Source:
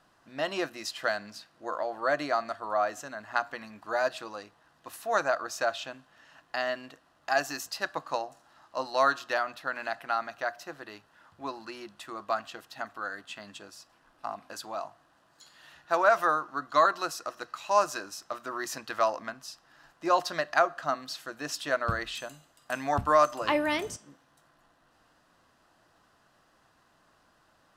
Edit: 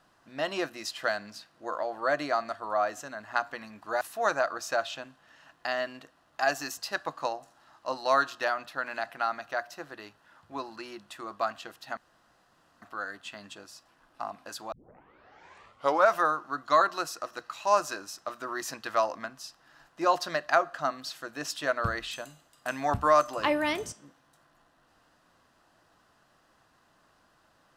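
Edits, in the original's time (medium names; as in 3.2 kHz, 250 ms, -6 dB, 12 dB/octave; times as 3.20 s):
4.01–4.90 s: delete
12.86 s: insert room tone 0.85 s
14.76 s: tape start 1.39 s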